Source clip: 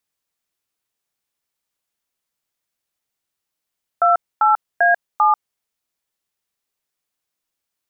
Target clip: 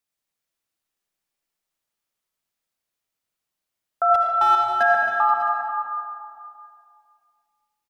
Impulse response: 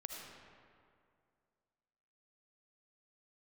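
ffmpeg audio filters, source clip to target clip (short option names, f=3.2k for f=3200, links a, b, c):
-filter_complex "[0:a]asettb=1/sr,asplit=3[a][b][c];[a]atrim=end=4.144[d];[b]atrim=start=4.14:end=4.83,asetpts=PTS-STARTPTS,afade=t=in:d=0.004:c=qsin,afade=t=out:st=0.686:d=0.004:c=qsin,asoftclip=type=hard:threshold=-10.5dB[e];[c]atrim=start=4.826[f];[d][e]acrossfade=d=0.004:c1=hsin:c2=qsin[g];[g][f]acrossfade=d=0.004:c1=qsin:c2=hsin,aecho=1:1:270|480|593|665:0.282|0.2|0.133|0.119[h];[1:a]atrim=start_sample=2205[i];[h][i]afir=irnorm=-1:irlink=0"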